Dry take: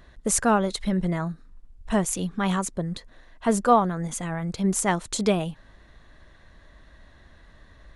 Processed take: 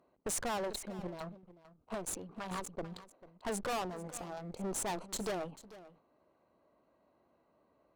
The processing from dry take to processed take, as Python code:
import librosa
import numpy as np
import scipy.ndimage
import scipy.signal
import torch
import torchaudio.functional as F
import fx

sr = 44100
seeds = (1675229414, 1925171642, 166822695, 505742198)

y = fx.wiener(x, sr, points=25)
y = scipy.signal.sosfilt(scipy.signal.butter(2, 330.0, 'highpass', fs=sr, output='sos'), y)
y = fx.leveller(y, sr, passes=1)
y = fx.chopper(y, sr, hz=4.6, depth_pct=60, duty_pct=40, at=(0.77, 2.87))
y = fx.tube_stage(y, sr, drive_db=31.0, bias=0.6)
y = y + 10.0 ** (-17.0 / 20.0) * np.pad(y, (int(443 * sr / 1000.0), 0))[:len(y)]
y = fx.sustainer(y, sr, db_per_s=130.0)
y = F.gain(torch.from_numpy(y), -2.5).numpy()